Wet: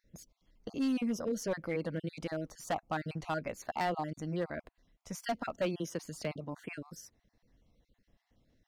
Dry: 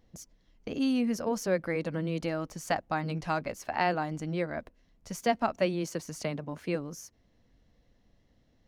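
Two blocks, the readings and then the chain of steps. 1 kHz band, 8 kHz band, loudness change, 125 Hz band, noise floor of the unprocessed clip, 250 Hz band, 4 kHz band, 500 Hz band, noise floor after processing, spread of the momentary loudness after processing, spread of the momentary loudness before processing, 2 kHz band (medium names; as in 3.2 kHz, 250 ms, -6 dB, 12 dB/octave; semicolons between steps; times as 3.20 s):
-5.5 dB, -4.0 dB, -5.0 dB, -5.0 dB, -67 dBFS, -4.5 dB, -5.0 dB, -5.5 dB, -82 dBFS, 12 LU, 13 LU, -6.0 dB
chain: random holes in the spectrogram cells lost 31%; overload inside the chain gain 23.5 dB; trim -3 dB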